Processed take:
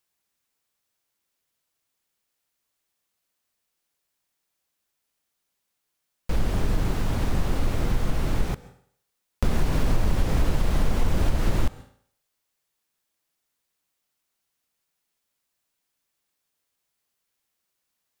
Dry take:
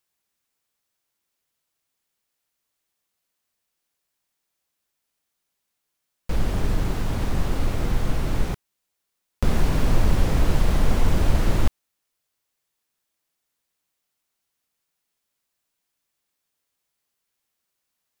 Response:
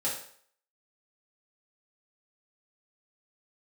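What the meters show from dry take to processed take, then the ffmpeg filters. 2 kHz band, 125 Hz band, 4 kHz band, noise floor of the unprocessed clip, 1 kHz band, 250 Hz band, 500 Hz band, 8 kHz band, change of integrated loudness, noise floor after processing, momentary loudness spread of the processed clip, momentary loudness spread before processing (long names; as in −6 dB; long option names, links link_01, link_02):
−2.0 dB, −2.0 dB, −2.0 dB, −80 dBFS, −2.0 dB, −2.0 dB, −2.0 dB, −2.0 dB, −2.0 dB, −80 dBFS, 5 LU, 6 LU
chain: -filter_complex "[0:a]acompressor=threshold=-16dB:ratio=4,asplit=2[link_01][link_02];[1:a]atrim=start_sample=2205,asetrate=42336,aresample=44100,adelay=129[link_03];[link_02][link_03]afir=irnorm=-1:irlink=0,volume=-23.5dB[link_04];[link_01][link_04]amix=inputs=2:normalize=0"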